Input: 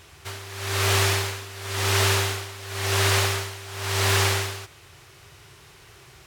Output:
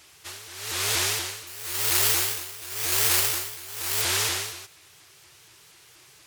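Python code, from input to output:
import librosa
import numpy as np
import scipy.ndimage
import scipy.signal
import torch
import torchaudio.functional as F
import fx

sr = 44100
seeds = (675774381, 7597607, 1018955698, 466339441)

y = fx.highpass(x, sr, hz=180.0, slope=6)
y = fx.high_shelf(y, sr, hz=2900.0, db=11.5)
y = fx.resample_bad(y, sr, factor=6, down='filtered', up='zero_stuff', at=(1.47, 4.02))
y = fx.vibrato_shape(y, sr, shape='saw_up', rate_hz=4.2, depth_cents=250.0)
y = y * 10.0 ** (-8.5 / 20.0)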